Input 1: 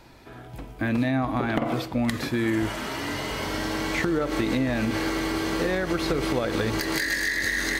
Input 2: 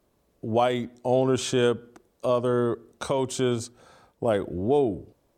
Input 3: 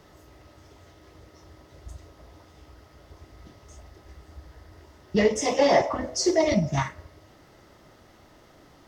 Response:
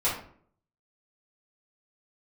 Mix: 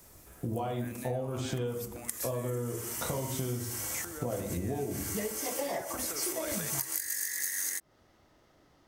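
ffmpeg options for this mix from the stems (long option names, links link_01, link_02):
-filter_complex "[0:a]aexciter=amount=9:drive=7.9:freq=6000,acrusher=bits=8:mix=0:aa=0.000001,highpass=frequency=1000:poles=1,volume=-4.5dB,afade=type=in:start_time=6.04:duration=0.25:silence=0.421697[link_01];[1:a]lowshelf=frequency=280:gain=11,acompressor=threshold=-39dB:ratio=1.5,volume=-5dB,asplit=2[link_02][link_03];[link_03]volume=-6dB[link_04];[2:a]volume=-10dB[link_05];[3:a]atrim=start_sample=2205[link_06];[link_04][link_06]afir=irnorm=-1:irlink=0[link_07];[link_01][link_02][link_05][link_07]amix=inputs=4:normalize=0,acompressor=threshold=-30dB:ratio=10"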